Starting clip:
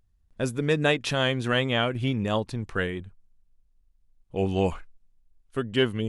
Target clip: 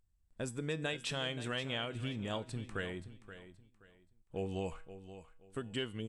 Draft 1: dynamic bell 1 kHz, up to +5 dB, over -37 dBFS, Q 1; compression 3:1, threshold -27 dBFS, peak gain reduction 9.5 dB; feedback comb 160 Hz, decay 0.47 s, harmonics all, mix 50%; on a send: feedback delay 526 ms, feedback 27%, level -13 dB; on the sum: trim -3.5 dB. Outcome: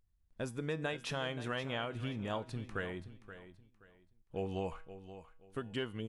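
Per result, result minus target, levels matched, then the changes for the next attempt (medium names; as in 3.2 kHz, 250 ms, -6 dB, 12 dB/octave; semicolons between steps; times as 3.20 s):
8 kHz band -5.0 dB; 4 kHz band -4.0 dB
add after compression: peaking EQ 8 kHz +12.5 dB 0.21 oct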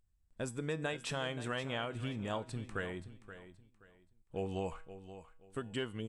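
4 kHz band -3.5 dB
change: dynamic bell 3.4 kHz, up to +5 dB, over -37 dBFS, Q 1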